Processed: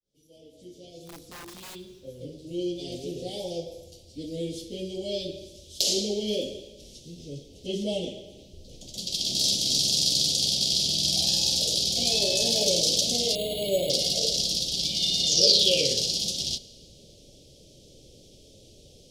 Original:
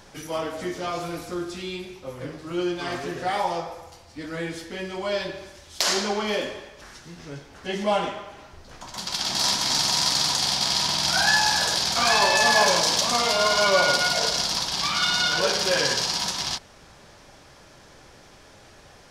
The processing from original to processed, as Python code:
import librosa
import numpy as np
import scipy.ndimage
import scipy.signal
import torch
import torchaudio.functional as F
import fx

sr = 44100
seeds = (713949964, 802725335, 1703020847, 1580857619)

y = fx.fade_in_head(x, sr, length_s=3.71)
y = scipy.signal.sosfilt(scipy.signal.ellip(3, 1.0, 80, [530.0, 3200.0], 'bandstop', fs=sr, output='sos'), y)
y = fx.overflow_wrap(y, sr, gain_db=38.0, at=(1.06, 1.74), fade=0.02)
y = fx.peak_eq(y, sr, hz=fx.line((15.26, 7500.0), (16.07, 1400.0)), db=14.5, octaves=0.41, at=(15.26, 16.07), fade=0.02)
y = fx.rev_schroeder(y, sr, rt60_s=1.9, comb_ms=26, drr_db=19.5)
y = fx.resample_bad(y, sr, factor=6, down='filtered', up='hold', at=(13.35, 13.9))